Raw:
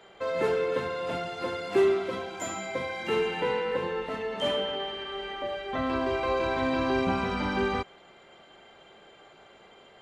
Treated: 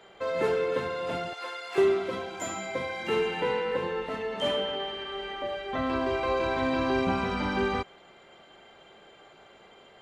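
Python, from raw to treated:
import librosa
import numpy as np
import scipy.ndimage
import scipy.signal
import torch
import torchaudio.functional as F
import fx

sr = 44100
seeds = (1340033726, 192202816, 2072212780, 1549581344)

y = fx.highpass(x, sr, hz=860.0, slope=12, at=(1.33, 1.78))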